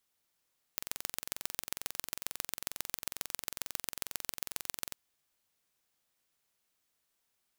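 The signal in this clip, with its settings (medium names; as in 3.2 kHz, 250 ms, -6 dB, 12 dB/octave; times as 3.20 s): pulse train 22.2 per s, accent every 3, -5.5 dBFS 4.15 s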